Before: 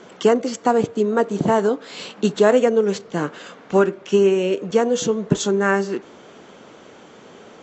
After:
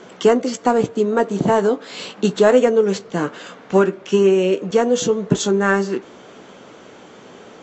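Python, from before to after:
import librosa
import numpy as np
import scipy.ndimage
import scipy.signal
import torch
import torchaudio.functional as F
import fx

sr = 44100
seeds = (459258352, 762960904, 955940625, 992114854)

p1 = 10.0 ** (-13.5 / 20.0) * np.tanh(x / 10.0 ** (-13.5 / 20.0))
p2 = x + (p1 * 10.0 ** (-11.5 / 20.0))
y = fx.doubler(p2, sr, ms=16.0, db=-12.0)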